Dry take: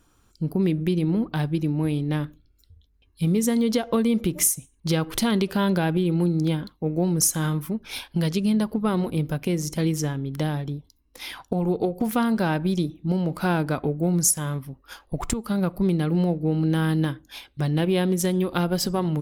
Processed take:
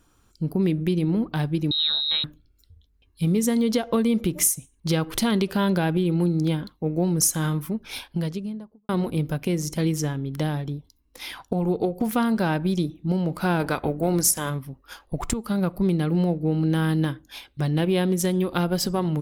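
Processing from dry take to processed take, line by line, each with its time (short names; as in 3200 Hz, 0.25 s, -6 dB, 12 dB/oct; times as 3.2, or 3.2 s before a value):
1.71–2.24 inverted band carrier 4000 Hz
7.85–8.89 studio fade out
13.59–14.49 spectral limiter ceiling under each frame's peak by 13 dB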